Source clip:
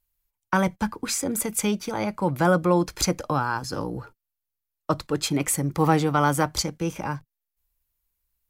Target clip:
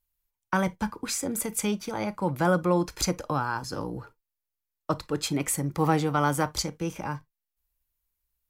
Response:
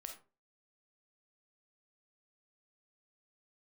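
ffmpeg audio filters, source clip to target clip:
-filter_complex "[0:a]asplit=2[link_01][link_02];[1:a]atrim=start_sample=2205,afade=type=out:start_time=0.16:duration=0.01,atrim=end_sample=7497,asetrate=66150,aresample=44100[link_03];[link_02][link_03]afir=irnorm=-1:irlink=0,volume=-2dB[link_04];[link_01][link_04]amix=inputs=2:normalize=0,volume=-5.5dB"

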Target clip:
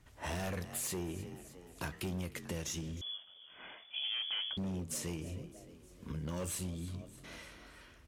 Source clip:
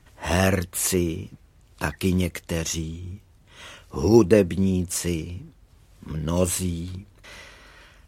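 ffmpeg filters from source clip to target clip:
ffmpeg -i in.wav -filter_complex "[0:a]asplit=5[link_01][link_02][link_03][link_04][link_05];[link_02]adelay=307,afreqshift=43,volume=-21dB[link_06];[link_03]adelay=614,afreqshift=86,volume=-26dB[link_07];[link_04]adelay=921,afreqshift=129,volume=-31.1dB[link_08];[link_05]adelay=1228,afreqshift=172,volume=-36.1dB[link_09];[link_01][link_06][link_07][link_08][link_09]amix=inputs=5:normalize=0,volume=20.5dB,asoftclip=hard,volume=-20.5dB,flanger=delay=9.2:depth=9.5:regen=-86:speed=0.88:shape=triangular,acompressor=threshold=-33dB:ratio=6,asettb=1/sr,asplit=3[link_10][link_11][link_12];[link_10]atrim=end=3.014[link_13];[link_11]atrim=start=3.01:end=4.57,asetpts=PTS-STARTPTS,afade=type=in:duration=0.004:curve=qsin,afade=type=out:start_time=1.556:duration=0.004:curve=qsin,lowpass=frequency=3000:width_type=q:width=0.5098,lowpass=frequency=3000:width_type=q:width=0.6013,lowpass=frequency=3000:width_type=q:width=0.9,lowpass=frequency=3000:width_type=q:width=2.563,afreqshift=-3500[link_14];[link_12]atrim=start=4.566[link_15];[link_13][link_14]acrossfade=duration=0.004:curve1=hsin:curve2=qsin[link_16];[link_16][link_15]acrossfade=duration=0.004:curve1=qsin:curve2=hsin,volume=-3dB" out.wav

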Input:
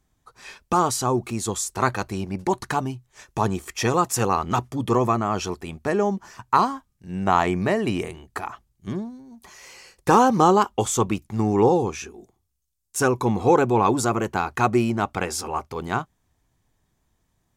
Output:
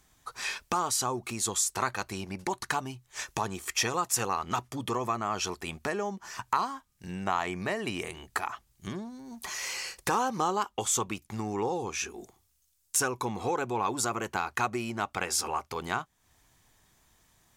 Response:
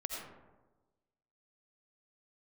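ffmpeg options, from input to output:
-af "acompressor=threshold=-41dB:ratio=2.5,tiltshelf=frequency=720:gain=-5.5,volume=6dB"

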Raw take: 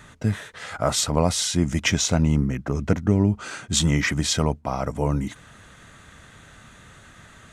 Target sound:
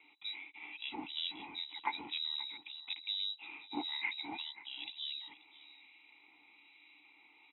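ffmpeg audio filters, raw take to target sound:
ffmpeg -i in.wav -filter_complex "[0:a]lowpass=frequency=3400:width_type=q:width=0.5098,lowpass=frequency=3400:width_type=q:width=0.6013,lowpass=frequency=3400:width_type=q:width=0.9,lowpass=frequency=3400:width_type=q:width=2.563,afreqshift=-4000,asplit=3[link_01][link_02][link_03];[link_01]bandpass=frequency=300:width_type=q:width=8,volume=0dB[link_04];[link_02]bandpass=frequency=870:width_type=q:width=8,volume=-6dB[link_05];[link_03]bandpass=frequency=2240:width_type=q:width=8,volume=-9dB[link_06];[link_04][link_05][link_06]amix=inputs=3:normalize=0,asplit=2[link_07][link_08];[link_08]aecho=0:1:532:0.168[link_09];[link_07][link_09]amix=inputs=2:normalize=0,acrossover=split=1800[link_10][link_11];[link_10]aeval=exprs='val(0)*(1-0.5/2+0.5/2*cos(2*PI*1.1*n/s))':channel_layout=same[link_12];[link_11]aeval=exprs='val(0)*(1-0.5/2-0.5/2*cos(2*PI*1.1*n/s))':channel_layout=same[link_13];[link_12][link_13]amix=inputs=2:normalize=0,volume=4.5dB" out.wav

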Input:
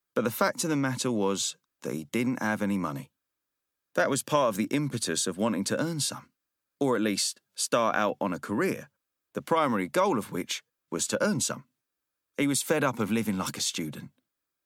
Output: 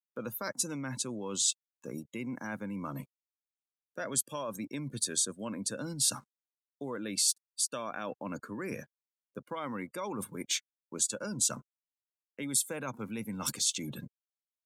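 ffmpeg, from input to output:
ffmpeg -i in.wav -af "aeval=exprs='sgn(val(0))*max(abs(val(0))-0.00211,0)':channel_layout=same,lowshelf=frequency=390:gain=3.5,areverse,acompressor=threshold=-34dB:ratio=5,areverse,afftdn=noise_reduction=22:noise_floor=-50,crystalizer=i=3.5:c=0,volume=-2.5dB" out.wav

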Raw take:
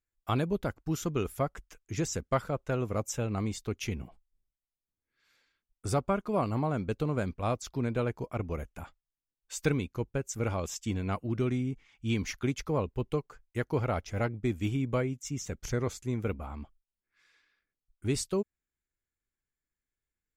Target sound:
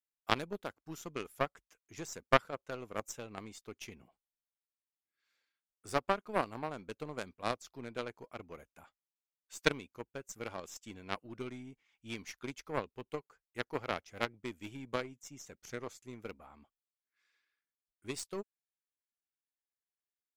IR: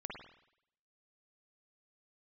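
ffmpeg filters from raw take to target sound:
-af "highpass=frequency=390:poles=1,aeval=exprs='0.168*(cos(1*acos(clip(val(0)/0.168,-1,1)))-cos(1*PI/2))+0.00841*(cos(2*acos(clip(val(0)/0.168,-1,1)))-cos(2*PI/2))+0.0531*(cos(3*acos(clip(val(0)/0.168,-1,1)))-cos(3*PI/2))+0.00211*(cos(5*acos(clip(val(0)/0.168,-1,1)))-cos(5*PI/2))+0.00188*(cos(8*acos(clip(val(0)/0.168,-1,1)))-cos(8*PI/2))':channel_layout=same,volume=8dB"

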